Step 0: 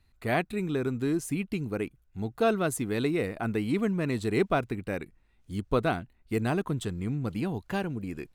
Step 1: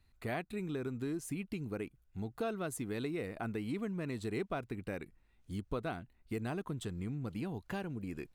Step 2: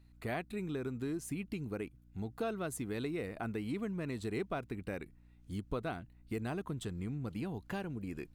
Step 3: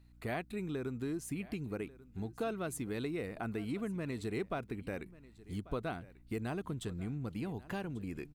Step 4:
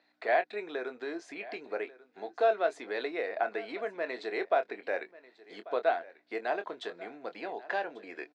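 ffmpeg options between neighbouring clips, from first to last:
-af "acompressor=threshold=-34dB:ratio=2.5,volume=-3.5dB"
-af "aeval=exprs='val(0)+0.001*(sin(2*PI*60*n/s)+sin(2*PI*2*60*n/s)/2+sin(2*PI*3*60*n/s)/3+sin(2*PI*4*60*n/s)/4+sin(2*PI*5*60*n/s)/5)':c=same"
-af "aecho=1:1:1141:0.106"
-filter_complex "[0:a]highpass=f=440:w=0.5412,highpass=f=440:w=1.3066,equalizer=f=670:t=q:w=4:g=8,equalizer=f=1.2k:t=q:w=4:g=-5,equalizer=f=1.7k:t=q:w=4:g=5,equalizer=f=2.9k:t=q:w=4:g=-6,lowpass=f=4.6k:w=0.5412,lowpass=f=4.6k:w=1.3066,asplit=2[a][b];[b]adelay=24,volume=-10dB[c];[a][c]amix=inputs=2:normalize=0,volume=8dB"

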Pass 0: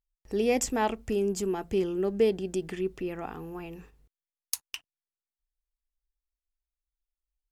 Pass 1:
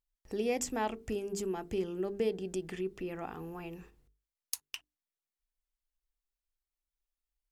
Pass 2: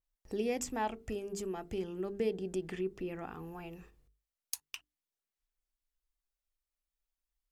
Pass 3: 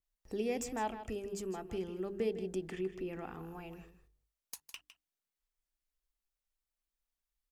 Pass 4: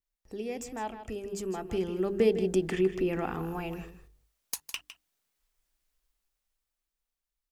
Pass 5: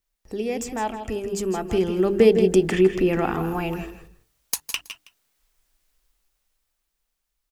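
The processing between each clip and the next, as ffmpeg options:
-filter_complex "[0:a]bandreject=f=50:t=h:w=6,bandreject=f=100:t=h:w=6,bandreject=f=150:t=h:w=6,bandreject=f=200:t=h:w=6,bandreject=f=250:t=h:w=6,bandreject=f=300:t=h:w=6,bandreject=f=350:t=h:w=6,bandreject=f=400:t=h:w=6,bandreject=f=450:t=h:w=6,asplit=2[a][b];[b]acompressor=threshold=-35dB:ratio=6,volume=1dB[c];[a][c]amix=inputs=2:normalize=0,volume=-8.5dB"
-af "aphaser=in_gain=1:out_gain=1:delay=1.7:decay=0.24:speed=0.37:type=sinusoidal,adynamicequalizer=threshold=0.00251:dfrequency=3200:dqfactor=0.7:tfrequency=3200:tqfactor=0.7:attack=5:release=100:ratio=0.375:range=1.5:mode=cutabove:tftype=highshelf,volume=-2dB"
-filter_complex "[0:a]acrossover=split=740|1000[a][b][c];[c]asoftclip=type=tanh:threshold=-31.5dB[d];[a][b][d]amix=inputs=3:normalize=0,aecho=1:1:157:0.251,volume=-1.5dB"
-af "dynaudnorm=f=310:g=11:m=13dB,volume=-1.5dB"
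-af "aecho=1:1:166:0.224,volume=9dB"

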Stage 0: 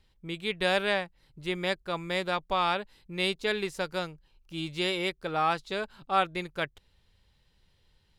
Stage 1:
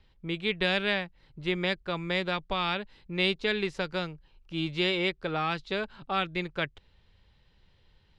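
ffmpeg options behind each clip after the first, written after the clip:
-filter_complex "[0:a]lowpass=3.9k,acrossover=split=330|1800[a][b][c];[b]acompressor=threshold=-36dB:ratio=6[d];[a][d][c]amix=inputs=3:normalize=0,volume=4dB"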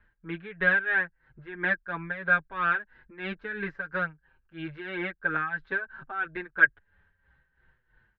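-filter_complex "[0:a]tremolo=f=3:d=0.76,lowpass=f=1.6k:t=q:w=13,asplit=2[a][b];[b]adelay=6.3,afreqshift=-0.61[c];[a][c]amix=inputs=2:normalize=1"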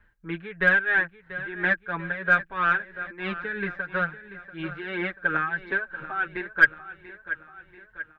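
-filter_complex "[0:a]aecho=1:1:687|1374|2061|2748|3435:0.188|0.102|0.0549|0.0297|0.016,aeval=exprs='0.473*(cos(1*acos(clip(val(0)/0.473,-1,1)))-cos(1*PI/2))+0.00376*(cos(8*acos(clip(val(0)/0.473,-1,1)))-cos(8*PI/2))':c=same,asplit=2[a][b];[b]aeval=exprs='clip(val(0),-1,0.178)':c=same,volume=-7dB[c];[a][c]amix=inputs=2:normalize=0"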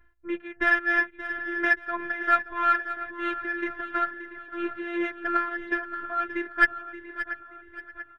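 -filter_complex "[0:a]afftfilt=real='hypot(re,im)*cos(PI*b)':imag='0':win_size=512:overlap=0.75,asplit=2[a][b];[b]adynamicsmooth=sensitivity=1.5:basefreq=3.2k,volume=2dB[c];[a][c]amix=inputs=2:normalize=0,aecho=1:1:577|1154|1731:0.224|0.0694|0.0215,volume=-2.5dB"

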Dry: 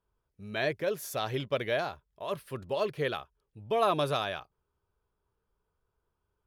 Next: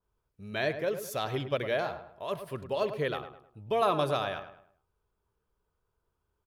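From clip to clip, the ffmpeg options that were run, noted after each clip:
-filter_complex "[0:a]asplit=2[a][b];[b]adelay=104,lowpass=f=2.1k:p=1,volume=-9.5dB,asplit=2[c][d];[d]adelay=104,lowpass=f=2.1k:p=1,volume=0.38,asplit=2[e][f];[f]adelay=104,lowpass=f=2.1k:p=1,volume=0.38,asplit=2[g][h];[h]adelay=104,lowpass=f=2.1k:p=1,volume=0.38[i];[a][c][e][g][i]amix=inputs=5:normalize=0,adynamicequalizer=threshold=0.00708:dfrequency=2200:dqfactor=0.7:tfrequency=2200:tqfactor=0.7:attack=5:release=100:ratio=0.375:range=2.5:mode=cutabove:tftype=highshelf"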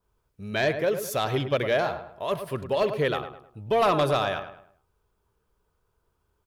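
-af "aeval=exprs='0.2*sin(PI/2*1.78*val(0)/0.2)':c=same,volume=-2dB"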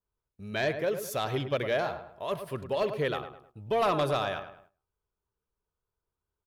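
-af "agate=range=-11dB:threshold=-54dB:ratio=16:detection=peak,volume=-4.5dB"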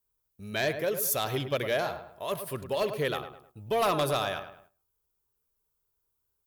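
-af "aemphasis=mode=production:type=50fm"

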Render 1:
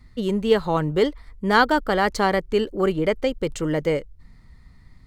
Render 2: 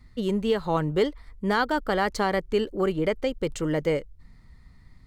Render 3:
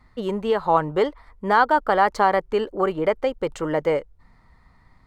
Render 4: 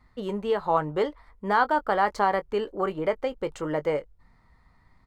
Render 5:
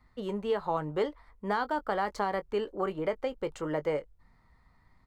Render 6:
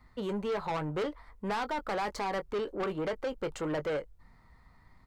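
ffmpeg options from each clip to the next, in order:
-af "alimiter=limit=-10.5dB:level=0:latency=1:release=200,volume=-2.5dB"
-af "equalizer=f=920:t=o:w=2.2:g=15,volume=-5dB"
-filter_complex "[0:a]asplit=2[a][b];[b]adelay=20,volume=-12.5dB[c];[a][c]amix=inputs=2:normalize=0,volume=-5dB"
-filter_complex "[0:a]acrossover=split=410|3000[a][b][c];[b]acompressor=threshold=-24dB:ratio=6[d];[a][d][c]amix=inputs=3:normalize=0,volume=-3.5dB"
-af "asoftclip=type=tanh:threshold=-32.5dB,volume=4dB"

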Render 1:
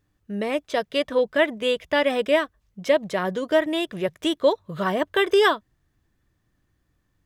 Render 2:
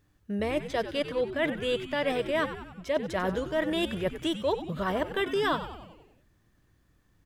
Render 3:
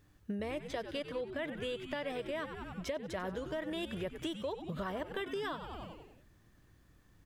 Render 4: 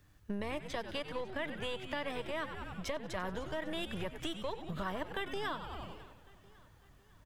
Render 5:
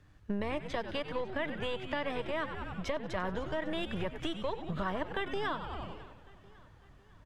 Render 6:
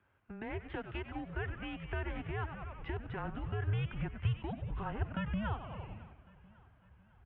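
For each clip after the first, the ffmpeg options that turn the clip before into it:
-filter_complex "[0:a]areverse,acompressor=threshold=-29dB:ratio=6,areverse,asplit=8[a][b][c][d][e][f][g][h];[b]adelay=94,afreqshift=-120,volume=-11dB[i];[c]adelay=188,afreqshift=-240,volume=-15.7dB[j];[d]adelay=282,afreqshift=-360,volume=-20.5dB[k];[e]adelay=376,afreqshift=-480,volume=-25.2dB[l];[f]adelay=470,afreqshift=-600,volume=-29.9dB[m];[g]adelay=564,afreqshift=-720,volume=-34.7dB[n];[h]adelay=658,afreqshift=-840,volume=-39.4dB[o];[a][i][j][k][l][m][n][o]amix=inputs=8:normalize=0,volume=3dB"
-af "acompressor=threshold=-37dB:ratio=12,volume=2dB"
-filter_complex "[0:a]acrossover=split=170|720|5000[a][b][c][d];[b]aeval=exprs='max(val(0),0)':c=same[e];[a][e][c][d]amix=inputs=4:normalize=0,aecho=1:1:551|1102|1653|2204:0.0891|0.0455|0.0232|0.0118,volume=2dB"
-af "aemphasis=mode=reproduction:type=50fm,volume=3.5dB"
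-af "highpass=f=180:t=q:w=0.5412,highpass=f=180:t=q:w=1.307,lowpass=f=3.1k:t=q:w=0.5176,lowpass=f=3.1k:t=q:w=0.7071,lowpass=f=3.1k:t=q:w=1.932,afreqshift=-210,asubboost=boost=8.5:cutoff=120,highpass=68,volume=-4dB"

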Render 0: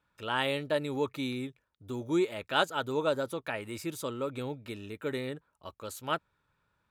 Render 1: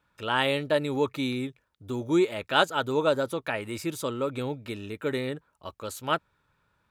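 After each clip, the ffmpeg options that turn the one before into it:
-af "highshelf=f=11k:g=-3.5,volume=5dB"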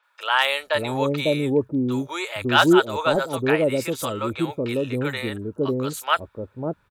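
-filter_complex "[0:a]aeval=exprs='0.282*(abs(mod(val(0)/0.282+3,4)-2)-1)':c=same,acrossover=split=620|5800[a][b][c];[c]adelay=30[d];[a]adelay=550[e];[e][b][d]amix=inputs=3:normalize=0,volume=7.5dB"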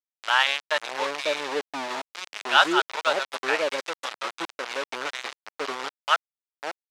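-af "aeval=exprs='val(0)*gte(abs(val(0)),0.0841)':c=same,highpass=670,lowpass=5.4k"

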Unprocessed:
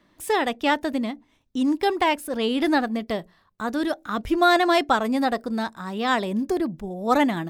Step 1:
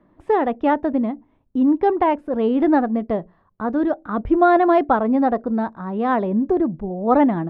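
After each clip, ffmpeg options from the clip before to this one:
-af "lowpass=1k,volume=5.5dB"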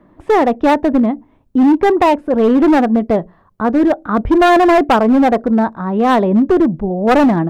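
-af "asoftclip=type=hard:threshold=-15.5dB,volume=8.5dB"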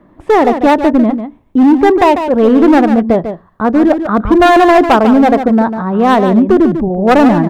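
-af "aecho=1:1:147:0.355,volume=3dB"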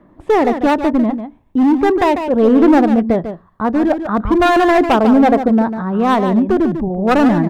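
-af "aphaser=in_gain=1:out_gain=1:delay=1.3:decay=0.22:speed=0.38:type=triangular,volume=-4.5dB"

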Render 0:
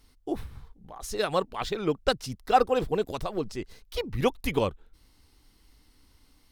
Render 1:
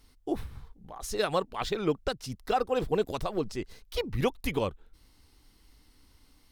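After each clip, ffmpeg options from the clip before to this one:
-af "alimiter=limit=-15.5dB:level=0:latency=1:release=306"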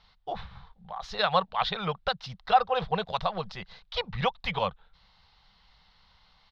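-af "firequalizer=gain_entry='entry(100,0);entry(180,9);entry(280,-19);entry(500,4);entry(770,13);entry(2500,8);entry(3700,14);entry(8800,-27)':delay=0.05:min_phase=1,volume=-5dB"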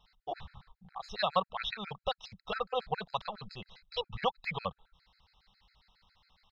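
-af "afftfilt=real='re*gt(sin(2*PI*7.3*pts/sr)*(1-2*mod(floor(b*sr/1024/1300),2)),0)':imag='im*gt(sin(2*PI*7.3*pts/sr)*(1-2*mod(floor(b*sr/1024/1300),2)),0)':win_size=1024:overlap=0.75,volume=-3dB"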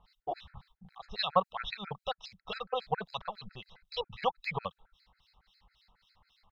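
-filter_complex "[0:a]acrossover=split=1900[a][b];[a]aeval=exprs='val(0)*(1-1/2+1/2*cos(2*PI*3.7*n/s))':c=same[c];[b]aeval=exprs='val(0)*(1-1/2-1/2*cos(2*PI*3.7*n/s))':c=same[d];[c][d]amix=inputs=2:normalize=0,volume=4.5dB"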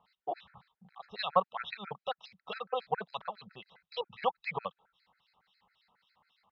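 -af "highpass=200,lowpass=3.2k"

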